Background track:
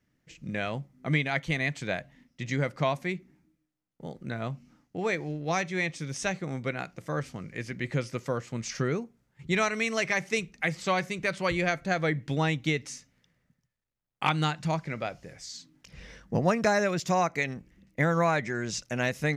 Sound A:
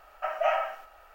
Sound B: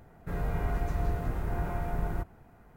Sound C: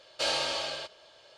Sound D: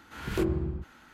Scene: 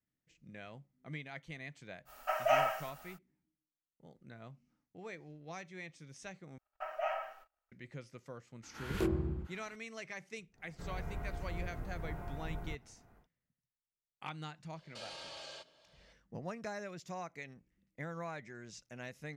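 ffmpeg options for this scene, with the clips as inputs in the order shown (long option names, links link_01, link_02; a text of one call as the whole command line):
ffmpeg -i bed.wav -i cue0.wav -i cue1.wav -i cue2.wav -i cue3.wav -filter_complex "[1:a]asplit=2[link_01][link_02];[0:a]volume=-18dB[link_03];[link_01]bass=frequency=250:gain=-1,treble=frequency=4000:gain=14[link_04];[link_02]agate=range=-28dB:threshold=-51dB:ratio=16:release=100:detection=peak[link_05];[2:a]acompressor=mode=upward:threshold=-45dB:ratio=2.5:attack=3.2:release=140:knee=2.83:detection=peak[link_06];[3:a]alimiter=level_in=4dB:limit=-24dB:level=0:latency=1:release=27,volume=-4dB[link_07];[link_03]asplit=2[link_08][link_09];[link_08]atrim=end=6.584[link_10];[link_05]atrim=end=1.14,asetpts=PTS-STARTPTS,volume=-10.5dB[link_11];[link_09]atrim=start=7.716[link_12];[link_04]atrim=end=1.14,asetpts=PTS-STARTPTS,volume=-3dB,afade=type=in:duration=0.05,afade=type=out:start_time=1.09:duration=0.05,adelay=2050[link_13];[4:a]atrim=end=1.13,asetpts=PTS-STARTPTS,volume=-5dB,afade=type=in:duration=0.004:curve=hsin,afade=type=out:start_time=1.126:duration=0.004:curve=hsin,adelay=8630[link_14];[link_06]atrim=end=2.76,asetpts=PTS-STARTPTS,volume=-11dB,afade=type=in:duration=0.1,afade=type=out:start_time=2.66:duration=0.1,adelay=10520[link_15];[link_07]atrim=end=1.37,asetpts=PTS-STARTPTS,volume=-11dB,afade=type=in:duration=0.004:curve=hsin,afade=type=out:start_time=1.366:duration=0.004:curve=hsin,adelay=650916S[link_16];[link_10][link_11]acrossfade=duration=0.004:curve1=hsin:curve2=hsin[link_17];[link_17][link_12]acrossfade=duration=0.004:curve1=hsin:curve2=hsin[link_18];[link_18][link_13][link_14][link_15][link_16]amix=inputs=5:normalize=0" out.wav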